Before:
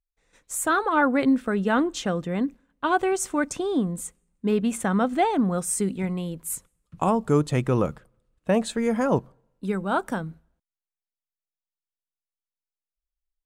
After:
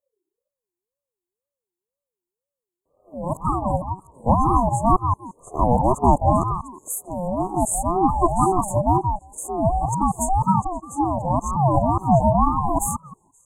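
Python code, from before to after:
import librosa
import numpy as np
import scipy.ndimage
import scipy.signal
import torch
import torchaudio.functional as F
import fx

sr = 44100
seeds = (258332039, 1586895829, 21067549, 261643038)

p1 = np.flip(x).copy()
p2 = fx.brickwall_bandstop(p1, sr, low_hz=730.0, high_hz=6700.0)
p3 = fx.peak_eq(p2, sr, hz=590.0, db=4.0, octaves=1.4)
p4 = p3 + fx.echo_stepped(p3, sr, ms=175, hz=450.0, octaves=1.4, feedback_pct=70, wet_db=-2.5, dry=0)
p5 = fx.ring_lfo(p4, sr, carrier_hz=460.0, swing_pct=25, hz=2.0)
y = p5 * librosa.db_to_amplitude(5.5)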